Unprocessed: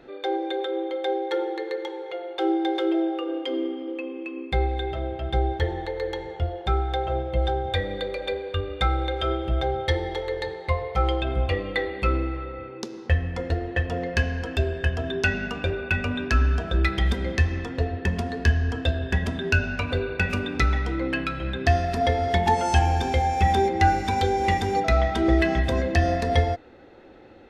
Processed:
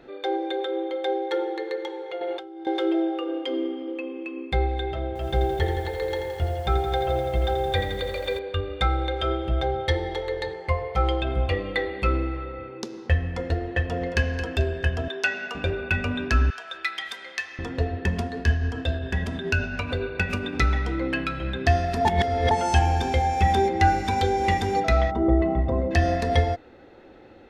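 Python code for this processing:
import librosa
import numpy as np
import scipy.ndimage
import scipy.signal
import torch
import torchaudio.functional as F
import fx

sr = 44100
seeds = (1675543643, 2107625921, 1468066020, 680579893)

y = fx.over_compress(x, sr, threshold_db=-35.0, ratio=-1.0, at=(2.21, 2.67))
y = fx.echo_crushed(y, sr, ms=84, feedback_pct=80, bits=8, wet_db=-8.0, at=(5.07, 8.39))
y = fx.notch(y, sr, hz=3800.0, q=5.0, at=(10.53, 10.94))
y = fx.echo_throw(y, sr, start_s=13.79, length_s=0.42, ms=220, feedback_pct=35, wet_db=-11.0)
y = fx.highpass(y, sr, hz=510.0, slope=12, at=(15.08, 15.55))
y = fx.highpass(y, sr, hz=1200.0, slope=12, at=(16.5, 17.59))
y = fx.tremolo(y, sr, hz=7.2, depth=0.33, at=(18.24, 20.53))
y = fx.savgol(y, sr, points=65, at=(25.1, 25.9), fade=0.02)
y = fx.edit(y, sr, fx.reverse_span(start_s=22.05, length_s=0.46), tone=tone)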